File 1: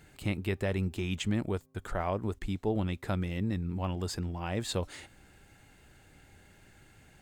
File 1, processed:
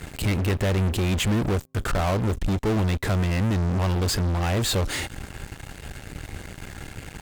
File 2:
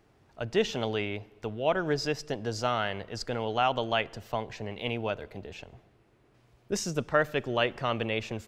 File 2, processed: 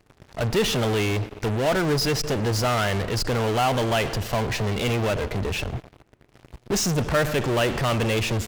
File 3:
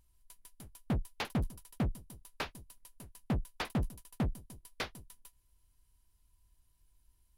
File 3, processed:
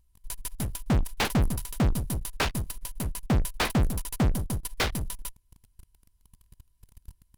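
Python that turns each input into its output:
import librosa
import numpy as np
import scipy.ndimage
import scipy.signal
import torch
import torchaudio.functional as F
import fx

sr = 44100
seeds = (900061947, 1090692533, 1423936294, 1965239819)

p1 = fx.low_shelf(x, sr, hz=140.0, db=7.5)
p2 = fx.fuzz(p1, sr, gain_db=46.0, gate_db=-55.0)
p3 = p1 + (p2 * 10.0 ** (-9.0 / 20.0))
y = p3 * 10.0 ** (-2.5 / 20.0)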